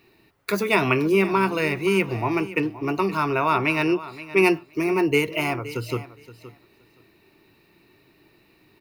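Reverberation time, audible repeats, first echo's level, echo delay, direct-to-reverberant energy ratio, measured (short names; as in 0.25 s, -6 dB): none, 2, -16.0 dB, 0.52 s, none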